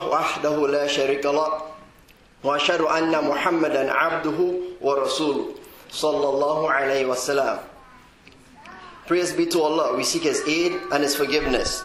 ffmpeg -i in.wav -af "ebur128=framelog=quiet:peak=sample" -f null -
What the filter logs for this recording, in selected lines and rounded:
Integrated loudness:
  I:         -22.1 LUFS
  Threshold: -32.9 LUFS
Loudness range:
  LRA:         2.6 LU
  Threshold: -43.1 LUFS
  LRA low:   -24.5 LUFS
  LRA high:  -21.9 LUFS
Sample peak:
  Peak:       -5.9 dBFS